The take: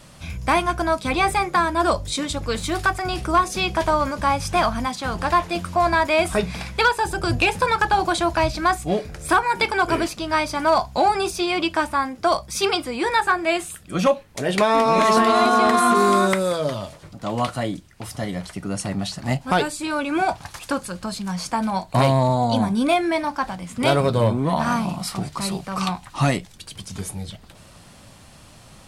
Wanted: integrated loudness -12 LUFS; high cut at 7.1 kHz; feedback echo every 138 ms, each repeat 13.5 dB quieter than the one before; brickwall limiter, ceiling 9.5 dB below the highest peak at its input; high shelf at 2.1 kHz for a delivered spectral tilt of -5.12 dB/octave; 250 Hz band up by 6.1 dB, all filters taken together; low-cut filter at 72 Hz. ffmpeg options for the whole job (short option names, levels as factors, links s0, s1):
-af "highpass=72,lowpass=7100,equalizer=f=250:t=o:g=8,highshelf=f=2100:g=-4.5,alimiter=limit=0.211:level=0:latency=1,aecho=1:1:138|276:0.211|0.0444,volume=3.55"